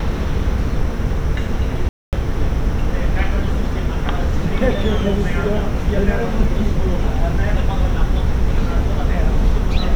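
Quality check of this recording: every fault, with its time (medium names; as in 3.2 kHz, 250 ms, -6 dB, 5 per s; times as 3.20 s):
1.89–2.13 s: dropout 238 ms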